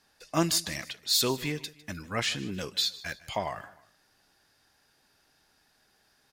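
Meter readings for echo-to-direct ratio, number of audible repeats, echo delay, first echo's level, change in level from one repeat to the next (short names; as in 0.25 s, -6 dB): -18.5 dB, 2, 0.153 s, -19.5 dB, -7.0 dB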